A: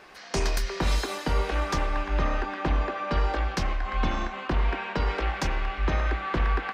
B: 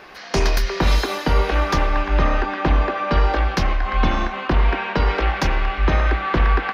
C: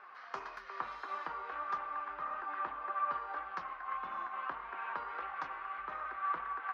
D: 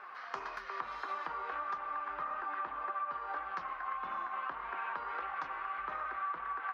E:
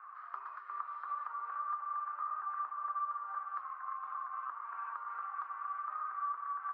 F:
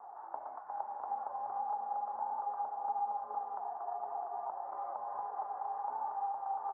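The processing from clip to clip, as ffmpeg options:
-af "equalizer=f=8.1k:w=2.6:g=-13,volume=8dB"
-af "acompressor=threshold=-24dB:ratio=2.5,bandpass=f=1.2k:t=q:w=3.4:csg=0,flanger=delay=4.6:depth=4.1:regen=62:speed=1.7:shape=triangular,volume=-1dB"
-af "acompressor=threshold=-40dB:ratio=6,volume=5dB"
-af "bandpass=f=1.2k:t=q:w=6:csg=0,volume=1.5dB"
-af "aecho=1:1:656:0.422,highpass=f=510:t=q:w=0.5412,highpass=f=510:t=q:w=1.307,lowpass=f=2k:t=q:w=0.5176,lowpass=f=2k:t=q:w=0.7071,lowpass=f=2k:t=q:w=1.932,afreqshift=-360,volume=1dB"

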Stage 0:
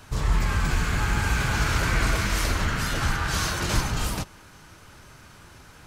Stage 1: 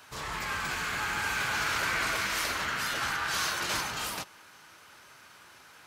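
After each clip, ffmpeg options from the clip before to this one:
-af "highpass=f=990:p=1,equalizer=f=7.7k:w=0.84:g=-4"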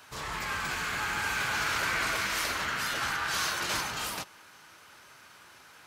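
-af anull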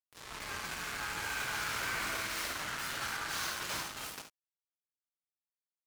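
-filter_complex "[0:a]acrusher=bits=4:mix=0:aa=0.5,asplit=2[a][b];[b]aecho=0:1:52|70:0.299|0.299[c];[a][c]amix=inputs=2:normalize=0,volume=-7.5dB"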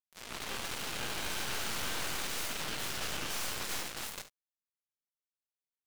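-af "aeval=exprs='0.0668*(cos(1*acos(clip(val(0)/0.0668,-1,1)))-cos(1*PI/2))+0.0106*(cos(3*acos(clip(val(0)/0.0668,-1,1)))-cos(3*PI/2))+0.0266*(cos(8*acos(clip(val(0)/0.0668,-1,1)))-cos(8*PI/2))':c=same,volume=-4dB"

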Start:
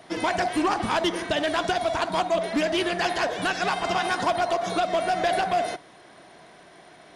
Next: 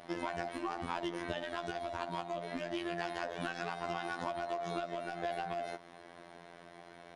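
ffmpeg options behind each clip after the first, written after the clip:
-af "acompressor=threshold=-32dB:ratio=6,afftfilt=real='hypot(re,im)*cos(PI*b)':imag='0':win_size=2048:overlap=0.75,highshelf=f=3.8k:g=-8"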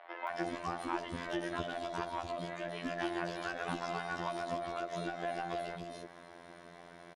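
-filter_complex "[0:a]acrossover=split=540|2900[a][b][c];[c]adelay=270[d];[a]adelay=300[e];[e][b][d]amix=inputs=3:normalize=0,volume=2dB"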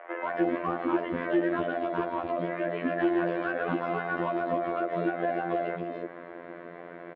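-af "volume=30.5dB,asoftclip=hard,volume=-30.5dB,highpass=160,equalizer=f=320:t=q:w=4:g=6,equalizer=f=500:t=q:w=4:g=7,equalizer=f=850:t=q:w=4:g=-6,lowpass=f=2.3k:w=0.5412,lowpass=f=2.3k:w=1.3066,volume=9dB"

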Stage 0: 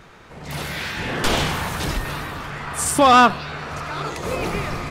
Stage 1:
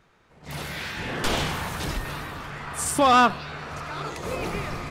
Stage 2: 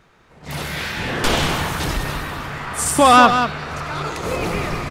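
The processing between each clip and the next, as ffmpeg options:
-af "agate=range=-10dB:threshold=-35dB:ratio=16:detection=peak,volume=-5dB"
-af "aecho=1:1:189:0.398,volume=6.5dB"

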